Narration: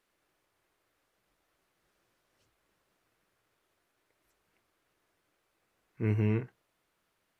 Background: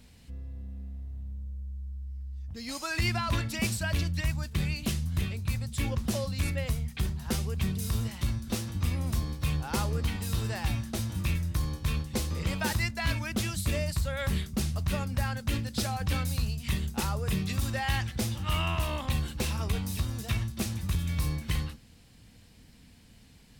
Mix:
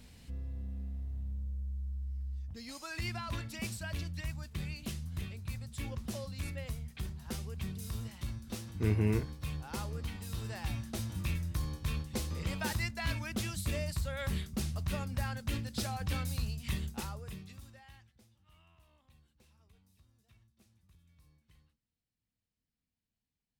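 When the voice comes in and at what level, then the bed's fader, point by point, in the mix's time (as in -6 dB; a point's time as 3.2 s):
2.80 s, -1.0 dB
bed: 2.34 s 0 dB
2.73 s -9.5 dB
10.29 s -9.5 dB
10.93 s -5.5 dB
16.84 s -5.5 dB
18.29 s -35.5 dB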